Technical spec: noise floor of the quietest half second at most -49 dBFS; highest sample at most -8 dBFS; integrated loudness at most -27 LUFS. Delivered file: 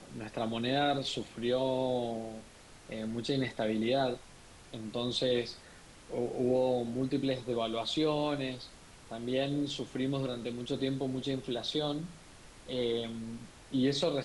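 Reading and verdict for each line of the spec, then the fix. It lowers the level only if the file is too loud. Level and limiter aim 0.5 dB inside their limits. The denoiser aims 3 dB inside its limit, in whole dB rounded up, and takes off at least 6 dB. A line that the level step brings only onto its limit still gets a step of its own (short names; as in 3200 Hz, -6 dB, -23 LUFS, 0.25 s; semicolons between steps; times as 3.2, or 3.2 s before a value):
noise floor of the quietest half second -54 dBFS: OK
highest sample -18.5 dBFS: OK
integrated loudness -33.5 LUFS: OK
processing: none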